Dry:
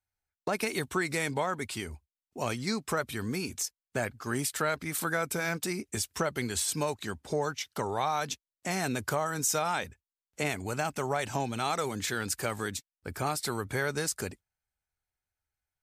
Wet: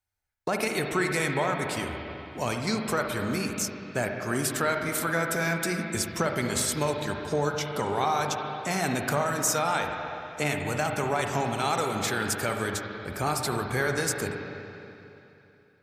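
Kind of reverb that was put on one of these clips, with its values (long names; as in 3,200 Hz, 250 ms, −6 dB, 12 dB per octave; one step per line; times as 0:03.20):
spring reverb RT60 3 s, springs 41/55/60 ms, chirp 40 ms, DRR 2.5 dB
level +2.5 dB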